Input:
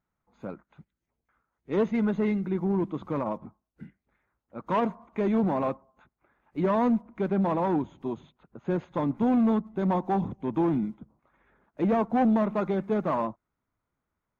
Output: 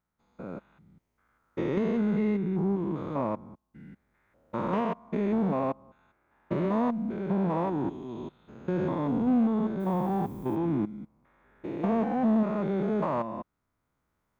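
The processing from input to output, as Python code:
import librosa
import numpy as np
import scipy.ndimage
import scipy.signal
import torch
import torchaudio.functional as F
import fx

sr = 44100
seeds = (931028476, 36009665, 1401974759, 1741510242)

y = fx.spec_steps(x, sr, hold_ms=200)
y = fx.recorder_agc(y, sr, target_db=-19.5, rise_db_per_s=5.9, max_gain_db=30)
y = fx.dmg_noise_colour(y, sr, seeds[0], colour='violet', level_db=-61.0, at=(9.79, 10.55), fade=0.02)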